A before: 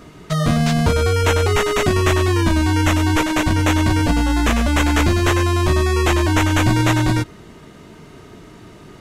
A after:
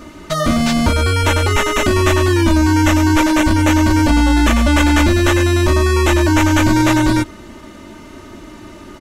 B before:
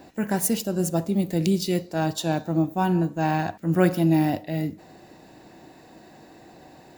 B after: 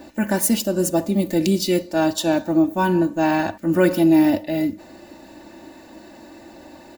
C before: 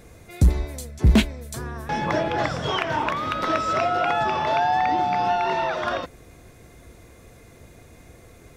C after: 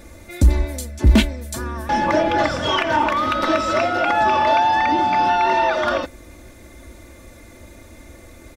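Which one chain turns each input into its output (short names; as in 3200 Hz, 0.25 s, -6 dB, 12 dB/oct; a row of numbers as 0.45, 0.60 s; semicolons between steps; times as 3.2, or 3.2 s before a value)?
comb 3.4 ms, depth 70%; in parallel at +1 dB: limiter -13 dBFS; on the sum: gain -2.5 dB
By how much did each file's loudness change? +3.5, +4.5, +4.5 LU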